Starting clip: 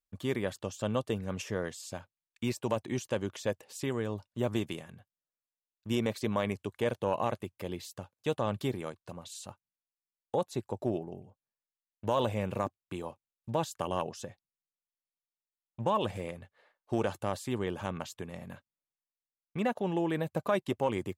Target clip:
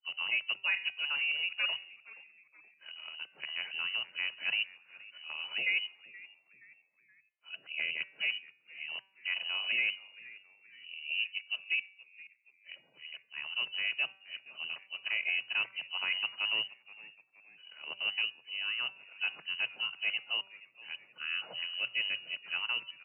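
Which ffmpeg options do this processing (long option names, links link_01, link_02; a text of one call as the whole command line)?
ffmpeg -i in.wav -filter_complex "[0:a]areverse,bandreject=frequency=207.3:width_type=h:width=4,bandreject=frequency=414.6:width_type=h:width=4,bandreject=frequency=621.9:width_type=h:width=4,bandreject=frequency=829.2:width_type=h:width=4,bandreject=frequency=1036.5:width_type=h:width=4,bandreject=frequency=1243.8:width_type=h:width=4,bandreject=frequency=1451.1:width_type=h:width=4,bandreject=frequency=1658.4:width_type=h:width=4,bandreject=frequency=1865.7:width_type=h:width=4,bandreject=frequency=2073:width_type=h:width=4,bandreject=frequency=2280.3:width_type=h:width=4,bandreject=frequency=2487.6:width_type=h:width=4,bandreject=frequency=2694.9:width_type=h:width=4,bandreject=frequency=2902.2:width_type=h:width=4,bandreject=frequency=3109.5:width_type=h:width=4,bandreject=frequency=3316.8:width_type=h:width=4,bandreject=frequency=3524.1:width_type=h:width=4,bandreject=frequency=3731.4:width_type=h:width=4,bandreject=frequency=3938.7:width_type=h:width=4,bandreject=frequency=4146:width_type=h:width=4,bandreject=frequency=4353.3:width_type=h:width=4,bandreject=frequency=4560.6:width_type=h:width=4,bandreject=frequency=4767.9:width_type=h:width=4,bandreject=frequency=4975.2:width_type=h:width=4,bandreject=frequency=5182.5:width_type=h:width=4,bandreject=frequency=5389.8:width_type=h:width=4,bandreject=frequency=5597.1:width_type=h:width=4,bandreject=frequency=5804.4:width_type=h:width=4,bandreject=frequency=6011.7:width_type=h:width=4,bandreject=frequency=6219:width_type=h:width=4,bandreject=frequency=6426.3:width_type=h:width=4,bandreject=frequency=6633.6:width_type=h:width=4,lowpass=frequency=2700:width_type=q:width=0.5098,lowpass=frequency=2700:width_type=q:width=0.6013,lowpass=frequency=2700:width_type=q:width=0.9,lowpass=frequency=2700:width_type=q:width=2.563,afreqshift=-3200,asetrate=40517,aresample=44100,asplit=2[link_01][link_02];[link_02]asplit=3[link_03][link_04][link_05];[link_03]adelay=474,afreqshift=-120,volume=-20dB[link_06];[link_04]adelay=948,afreqshift=-240,volume=-27.5dB[link_07];[link_05]adelay=1422,afreqshift=-360,volume=-35.1dB[link_08];[link_06][link_07][link_08]amix=inputs=3:normalize=0[link_09];[link_01][link_09]amix=inputs=2:normalize=0,afreqshift=120,equalizer=frequency=81:width=0.6:gain=3.5,volume=-2.5dB" out.wav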